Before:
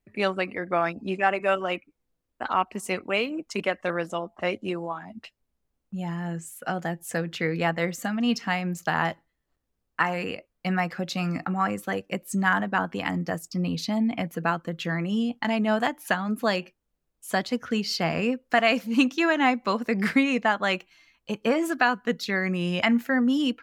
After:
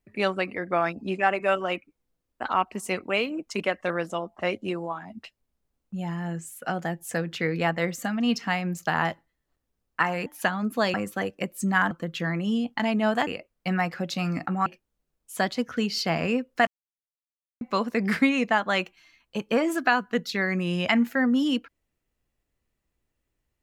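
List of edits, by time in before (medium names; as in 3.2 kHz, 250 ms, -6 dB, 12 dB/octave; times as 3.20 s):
10.26–11.65 s: swap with 15.92–16.60 s
12.62–14.56 s: delete
18.61–19.55 s: mute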